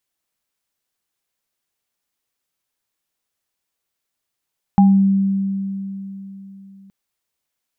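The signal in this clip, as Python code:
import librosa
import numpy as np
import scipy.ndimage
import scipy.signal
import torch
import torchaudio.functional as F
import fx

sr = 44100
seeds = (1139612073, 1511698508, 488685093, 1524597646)

y = fx.additive_free(sr, length_s=2.12, hz=195.0, level_db=-7.0, upper_db=(-6.0,), decay_s=3.61, upper_decays_s=(0.31,), upper_hz=(808.0,))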